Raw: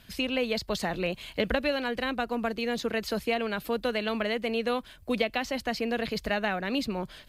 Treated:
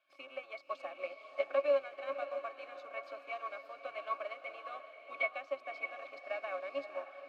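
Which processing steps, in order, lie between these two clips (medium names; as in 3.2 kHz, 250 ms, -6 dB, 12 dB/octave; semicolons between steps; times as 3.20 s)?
octave divider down 1 oct, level 0 dB; in parallel at -8 dB: Schmitt trigger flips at -33 dBFS; on the sum: high-pass 630 Hz 24 dB/octave; pitch-class resonator C#, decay 0.1 s; on a send: echo that smears into a reverb 582 ms, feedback 45%, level -6.5 dB; on the sum: upward expansion 1.5:1, over -52 dBFS; trim +9 dB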